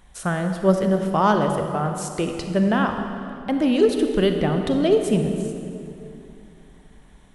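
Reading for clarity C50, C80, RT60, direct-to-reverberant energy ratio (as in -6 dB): 5.5 dB, 6.5 dB, 2.7 s, 5.0 dB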